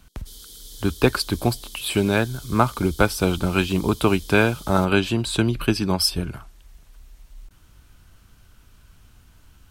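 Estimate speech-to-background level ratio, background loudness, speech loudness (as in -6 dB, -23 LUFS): 19.0 dB, -41.0 LUFS, -22.0 LUFS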